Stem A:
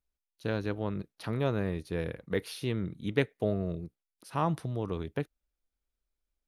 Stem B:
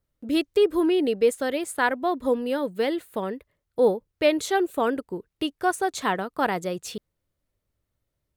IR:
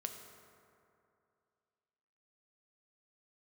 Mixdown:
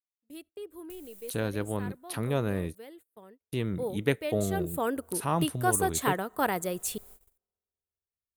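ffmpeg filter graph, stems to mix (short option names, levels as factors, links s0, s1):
-filter_complex "[0:a]acompressor=mode=upward:threshold=0.0141:ratio=2.5,adelay=900,volume=1.12,asplit=3[s0][s1][s2];[s0]atrim=end=2.75,asetpts=PTS-STARTPTS,afade=t=out:st=2.746:d=0.004:c=hsin[s3];[s1]atrim=start=2.75:end=3.52,asetpts=PTS-STARTPTS,volume=0[s4];[s2]atrim=start=3.52,asetpts=PTS-STARTPTS,afade=t=in:d=0.004:c=hsin[s5];[s3][s4][s5]concat=n=3:v=0:a=1[s6];[1:a]equalizer=f=82:w=7.6:g=14,volume=0.631,afade=t=in:st=3.42:d=0.22:silence=0.375837,afade=t=in:st=4.47:d=0.58:silence=0.298538,asplit=2[s7][s8];[s8]volume=0.0794[s9];[2:a]atrim=start_sample=2205[s10];[s9][s10]afir=irnorm=-1:irlink=0[s11];[s6][s7][s11]amix=inputs=3:normalize=0,agate=range=0.0631:threshold=0.00224:ratio=16:detection=peak,aexciter=amount=3.9:drive=7:freq=7300"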